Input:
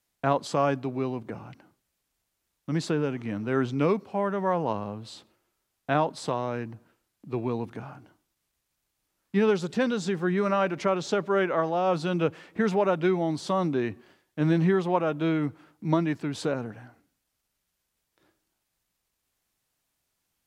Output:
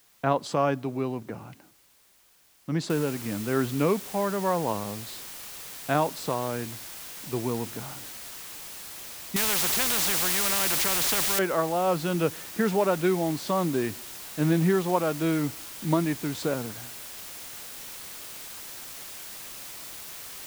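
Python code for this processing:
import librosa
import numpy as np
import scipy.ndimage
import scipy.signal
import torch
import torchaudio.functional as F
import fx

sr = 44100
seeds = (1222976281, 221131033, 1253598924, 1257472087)

y = fx.noise_floor_step(x, sr, seeds[0], at_s=2.9, before_db=-61, after_db=-41, tilt_db=0.0)
y = fx.spectral_comp(y, sr, ratio=4.0, at=(9.36, 11.39))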